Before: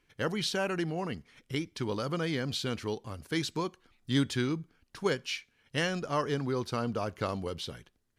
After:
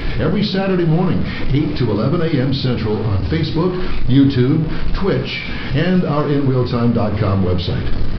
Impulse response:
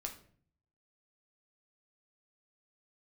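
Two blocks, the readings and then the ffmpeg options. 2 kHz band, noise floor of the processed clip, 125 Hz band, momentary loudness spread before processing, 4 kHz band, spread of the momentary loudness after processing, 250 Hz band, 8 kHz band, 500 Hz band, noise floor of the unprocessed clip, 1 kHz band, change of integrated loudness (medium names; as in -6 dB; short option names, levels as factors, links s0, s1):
+10.5 dB, -23 dBFS, +20.5 dB, 8 LU, +9.5 dB, 6 LU, +18.0 dB, under -10 dB, +14.0 dB, -73 dBFS, +11.0 dB, +16.0 dB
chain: -filter_complex "[0:a]aeval=exprs='val(0)+0.5*0.0266*sgn(val(0))':c=same,lowshelf=f=480:g=11.5,asplit=2[s0][s1];[s1]acompressor=threshold=0.0355:ratio=6,volume=1.33[s2];[s0][s2]amix=inputs=2:normalize=0,aresample=11025,aresample=44100[s3];[1:a]atrim=start_sample=2205[s4];[s3][s4]afir=irnorm=-1:irlink=0,volume=1.58"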